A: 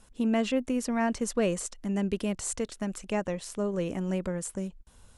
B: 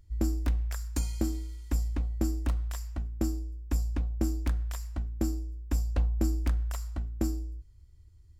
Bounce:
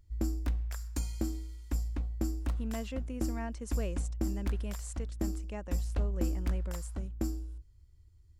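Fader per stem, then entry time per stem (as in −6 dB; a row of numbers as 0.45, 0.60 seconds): −12.5, −4.0 decibels; 2.40, 0.00 seconds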